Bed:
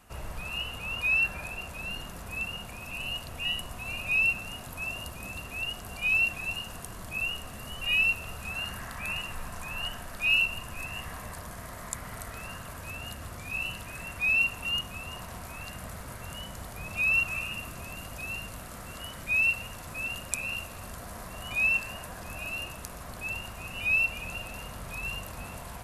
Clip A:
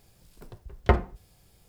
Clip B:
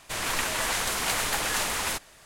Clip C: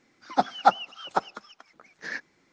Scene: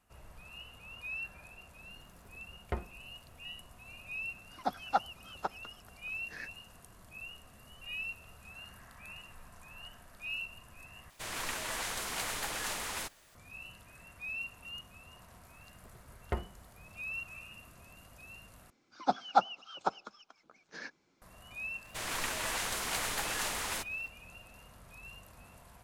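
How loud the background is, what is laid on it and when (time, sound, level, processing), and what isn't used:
bed −15 dB
0:01.83: mix in A −15.5 dB
0:04.28: mix in C −11 dB
0:11.10: overwrite with B −9.5 dB + bit reduction 9 bits
0:15.43: mix in A −14 dB
0:18.70: overwrite with C −6.5 dB + parametric band 1,900 Hz −12 dB 0.23 octaves
0:21.85: mix in B −7.5 dB + hold until the input has moved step −45.5 dBFS

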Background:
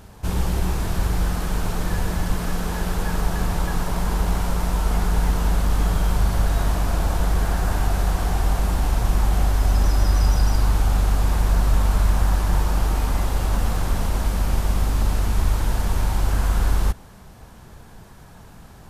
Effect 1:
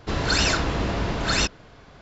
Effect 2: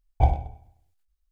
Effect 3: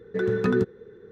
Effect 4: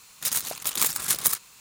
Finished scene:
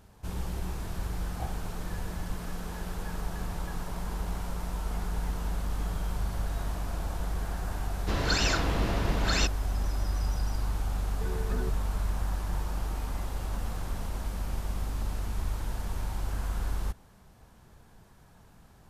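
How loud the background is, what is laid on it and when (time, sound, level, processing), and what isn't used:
background −12 dB
0:01.19: mix in 2 −15 dB
0:08.00: mix in 1 −5 dB + brickwall limiter −11 dBFS
0:11.06: mix in 3 −15 dB
not used: 4

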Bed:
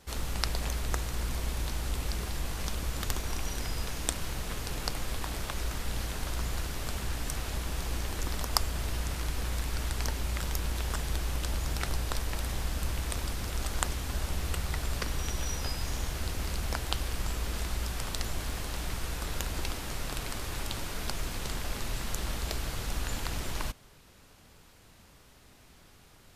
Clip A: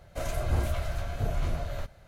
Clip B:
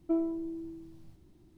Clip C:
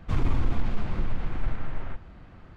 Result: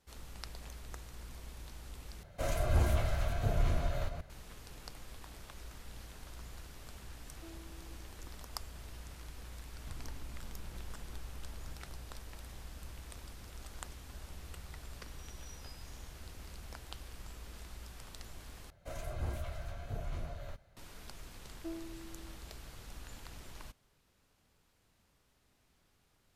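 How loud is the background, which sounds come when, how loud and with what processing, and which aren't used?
bed −15.5 dB
0:02.23: overwrite with A −2 dB + delay that plays each chunk backwards 220 ms, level −7 dB
0:07.33: mix in B −17.5 dB + downward compressor 1.5 to 1, threshold −46 dBFS
0:09.78: mix in C −17 dB + downward compressor, threshold −25 dBFS
0:18.70: overwrite with A −10.5 dB
0:21.55: mix in B −14 dB

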